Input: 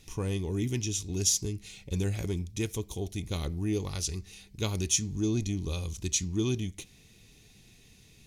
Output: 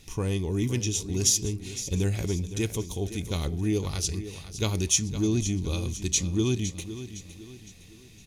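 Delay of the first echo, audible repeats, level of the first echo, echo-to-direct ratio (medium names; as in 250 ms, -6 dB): 511 ms, 3, -12.5 dB, -11.5 dB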